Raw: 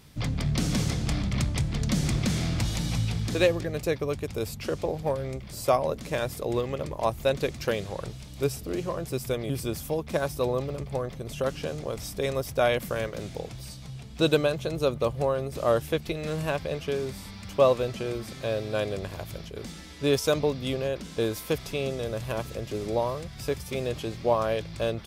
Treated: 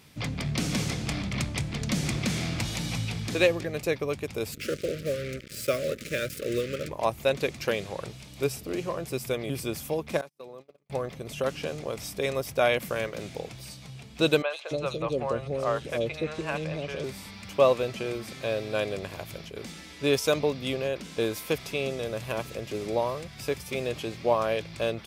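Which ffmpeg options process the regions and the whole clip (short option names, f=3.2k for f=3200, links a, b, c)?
-filter_complex "[0:a]asettb=1/sr,asplit=3[a][b][c];[a]atrim=end=4.524[d];[b]atrim=start=4.52:end=6.89,asetpts=PTS-STARTPTS,afade=t=in:d=0.004:c=qsin,afade=t=out:st=2.366:d=0.004:c=qsin,acrusher=bits=5:mix=0:aa=0.5,asuperstop=centerf=870:order=8:qfactor=1.3[e];[c]atrim=start=6.886[f];[d][e]acrossfade=d=0.004:c1=hsin:c2=qsin[g];[g][f]acrossfade=d=0.004:c1=qsin:c2=hsin,asettb=1/sr,asplit=3[h][i][j];[h]atrim=end=10.214[k];[i]atrim=start=10.21:end=10.9,asetpts=PTS-STARTPTS,afade=t=in:d=0.004:c=qsin,afade=t=out:st=0.686:d=0.004:c=qsin,highpass=150,agate=range=-39dB:threshold=-31dB:ratio=16:release=100:detection=peak,acompressor=threshold=-48dB:ratio=2.5:attack=3.2:release=140:knee=1:detection=peak[l];[j]atrim=start=10.896[m];[k][l]acrossfade=d=0.004:c1=hsin:c2=qsin[n];[n][m]acrossfade=d=0.004:c1=qsin:c2=hsin,asettb=1/sr,asplit=3[o][p][q];[o]atrim=end=14.424[r];[p]atrim=start=14.42:end=17.04,asetpts=PTS-STARTPTS,afade=t=in:d=0.004:c=qsin,afade=t=out:st=2.616:d=0.004:c=qsin,lowpass=7.3k,acrossover=split=560|3200[s][t][u];[u]adelay=80[v];[s]adelay=290[w];[w][t][v]amix=inputs=3:normalize=0,atrim=end_sample=115542[x];[q]atrim=start=17.036[y];[r][x]acrossfade=d=0.004:c1=hsin:c2=qsin[z];[z][y]acrossfade=d=0.004:c1=qsin:c2=hsin,highpass=f=150:p=1,equalizer=f=2.4k:w=2.6:g=4.5"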